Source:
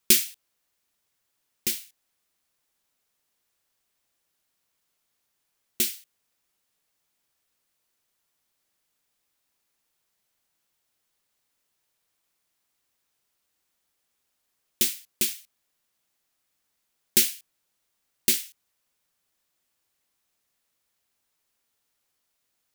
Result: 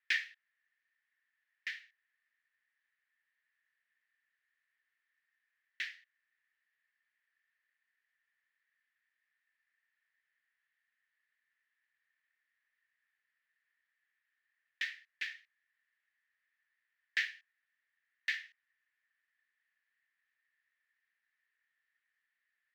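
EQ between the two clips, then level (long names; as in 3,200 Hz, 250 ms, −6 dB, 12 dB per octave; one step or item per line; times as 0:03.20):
high-pass with resonance 1,800 Hz, resonance Q 13
low-pass filter 3,200 Hz 6 dB per octave
high-frequency loss of the air 240 metres
−6.0 dB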